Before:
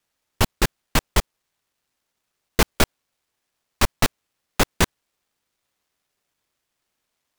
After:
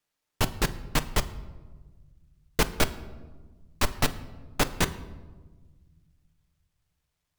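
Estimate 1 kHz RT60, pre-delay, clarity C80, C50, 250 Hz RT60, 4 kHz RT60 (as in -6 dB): 1.2 s, 7 ms, 17.0 dB, 15.5 dB, 2.1 s, 0.75 s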